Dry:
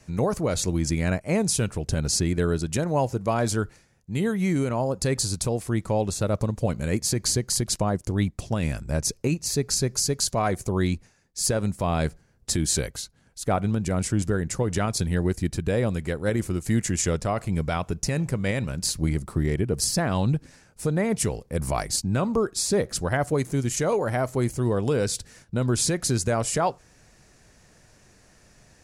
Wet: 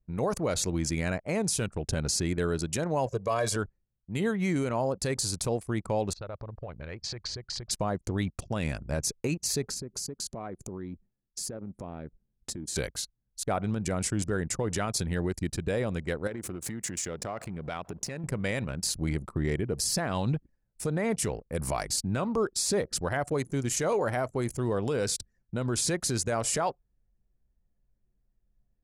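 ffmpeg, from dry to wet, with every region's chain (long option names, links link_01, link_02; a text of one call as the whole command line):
ffmpeg -i in.wav -filter_complex "[0:a]asettb=1/sr,asplit=3[link_01][link_02][link_03];[link_01]atrim=end=3.064[link_04];[link_02]atrim=start=3.06:end=3.56,asetpts=PTS-STARTPTS,afade=type=in:duration=0.004:curve=qsin,afade=type=out:start_time=0.496:duration=0.004:curve=qsin,highpass=frequency=130:poles=1,aecho=1:1:1.8:0.83,atrim=end_sample=22050[link_05];[link_03]atrim=start=3.556[link_06];[link_04][link_05]acrossfade=duration=0.004:curve1=hsin:curve2=qsin[link_07];[link_07][link_06]acrossfade=duration=0.004:curve1=qsin:curve2=hsin,asettb=1/sr,asplit=3[link_08][link_09][link_10];[link_08]atrim=end=6.134[link_11];[link_09]atrim=start=6.13:end=7.71,asetpts=PTS-STARTPTS,afade=type=in:duration=0.004:curve=qsin,afade=type=out:start_time=1.576:duration=0.004:curve=qsin,lowpass=frequency=4700:width=0.5412,lowpass=frequency=4700:width=1.3066,equalizer=frequency=240:width=1.1:gain=-13.5,acompressor=threshold=-30dB:ratio=20:attack=3.2:release=140:knee=1:detection=peak[link_12];[link_10]atrim=start=7.706[link_13];[link_11][link_12]acrossfade=duration=0.004:curve1=hsin:curve2=qsin[link_14];[link_14][link_13]acrossfade=duration=0.004:curve1=qsin:curve2=hsin,asettb=1/sr,asplit=3[link_15][link_16][link_17];[link_15]atrim=end=9.684[link_18];[link_16]atrim=start=9.68:end=12.76,asetpts=PTS-STARTPTS,afade=type=in:duration=0.004:curve=qsin,afade=type=out:start_time=3.076:duration=0.004:curve=qsin,equalizer=frequency=260:width=0.75:gain=8,acompressor=threshold=-33dB:ratio=5:attack=3.2:release=140:knee=1:detection=peak[link_19];[link_17]atrim=start=12.756[link_20];[link_18][link_19]acrossfade=duration=0.004:curve1=hsin:curve2=qsin[link_21];[link_21][link_20]acrossfade=duration=0.004:curve1=qsin:curve2=hsin,asettb=1/sr,asplit=3[link_22][link_23][link_24];[link_22]atrim=end=16.274[link_25];[link_23]atrim=start=16.27:end=18.24,asetpts=PTS-STARTPTS,afade=type=in:duration=0.004:curve=qsin,afade=type=out:start_time=1.966:duration=0.004:curve=qsin,aeval=exprs='val(0)+0.5*0.0126*sgn(val(0))':channel_layout=same,highpass=frequency=150:poles=1,acompressor=threshold=-28dB:ratio=20:attack=3.2:release=140:knee=1:detection=peak[link_26];[link_24]atrim=start=18.236[link_27];[link_25][link_26]acrossfade=duration=0.004:curve1=hsin:curve2=qsin[link_28];[link_28][link_27]acrossfade=duration=0.004:curve1=qsin:curve2=hsin,anlmdn=1.58,lowshelf=frequency=300:gain=-6,alimiter=limit=-19dB:level=0:latency=1:release=43" out.wav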